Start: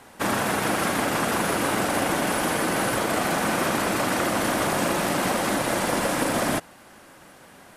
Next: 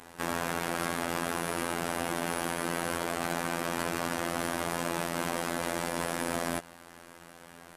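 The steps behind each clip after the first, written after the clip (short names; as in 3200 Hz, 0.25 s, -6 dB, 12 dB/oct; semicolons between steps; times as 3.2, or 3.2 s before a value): limiter -21.5 dBFS, peak gain reduction 10.5 dB; robotiser 85.2 Hz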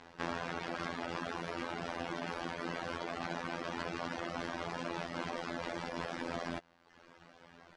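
LPF 5400 Hz 24 dB/oct; reverb removal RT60 1 s; gain -4 dB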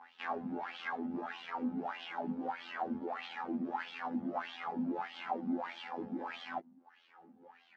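small resonant body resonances 220/800 Hz, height 16 dB, ringing for 65 ms; chorus voices 4, 0.43 Hz, delay 20 ms, depth 1.3 ms; wah 1.6 Hz 210–3300 Hz, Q 5; gain +10 dB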